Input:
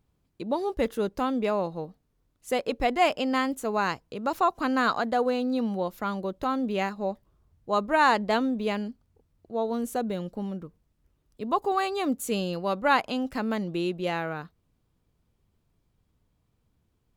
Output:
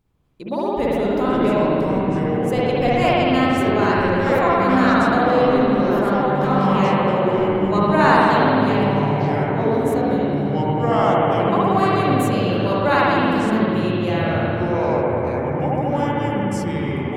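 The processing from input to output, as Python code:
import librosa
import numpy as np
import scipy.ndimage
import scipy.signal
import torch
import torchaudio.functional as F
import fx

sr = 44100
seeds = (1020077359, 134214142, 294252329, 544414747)

y = fx.rev_spring(x, sr, rt60_s=2.5, pass_ms=(54,), chirp_ms=30, drr_db=-7.0)
y = fx.echo_pitch(y, sr, ms=235, semitones=-5, count=3, db_per_echo=-3.0)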